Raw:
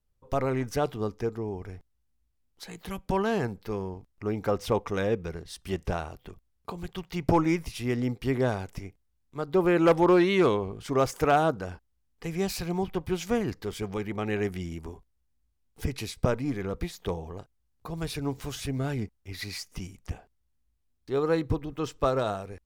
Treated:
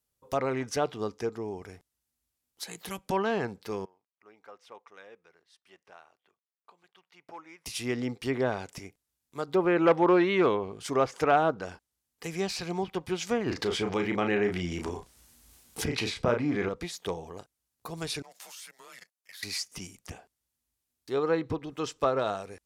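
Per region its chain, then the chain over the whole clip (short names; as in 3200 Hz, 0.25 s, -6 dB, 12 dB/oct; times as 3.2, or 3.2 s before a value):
3.85–7.66 LPF 1500 Hz + differentiator
13.46–16.69 doubler 34 ms -7 dB + fast leveller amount 50%
18.22–19.43 HPF 750 Hz 24 dB/oct + level quantiser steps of 17 dB + frequency shift -250 Hz
whole clip: high shelf 5300 Hz +11.5 dB; treble ducked by the level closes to 2500 Hz, closed at -20.5 dBFS; HPF 260 Hz 6 dB/oct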